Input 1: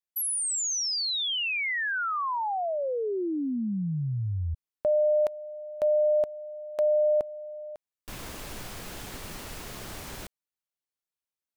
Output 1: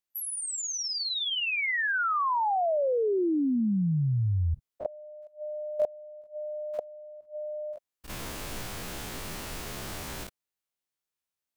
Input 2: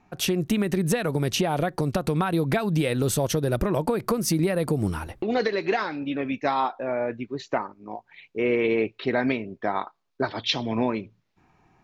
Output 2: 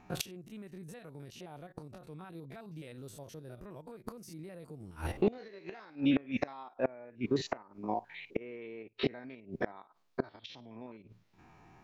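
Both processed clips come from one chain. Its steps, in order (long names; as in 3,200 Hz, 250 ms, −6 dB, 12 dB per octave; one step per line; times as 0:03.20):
spectrum averaged block by block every 50 ms
gate with flip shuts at −21 dBFS, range −26 dB
level +3.5 dB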